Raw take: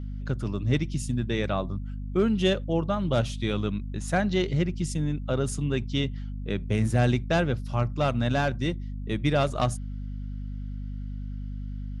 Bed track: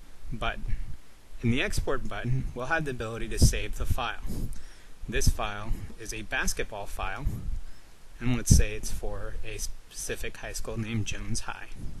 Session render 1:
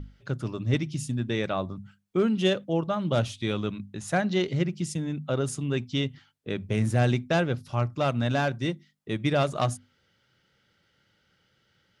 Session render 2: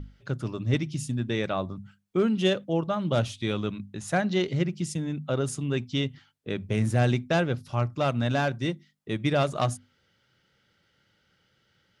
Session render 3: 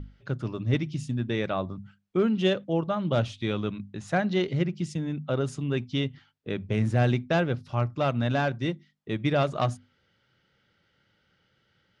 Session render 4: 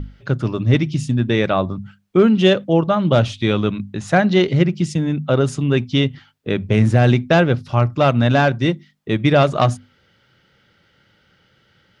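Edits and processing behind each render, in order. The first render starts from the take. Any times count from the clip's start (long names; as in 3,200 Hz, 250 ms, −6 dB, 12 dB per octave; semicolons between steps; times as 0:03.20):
mains-hum notches 50/100/150/200/250 Hz
no processing that can be heard
Bessel low-pass filter 4,300 Hz, order 2
level +11 dB; brickwall limiter −3 dBFS, peak gain reduction 3 dB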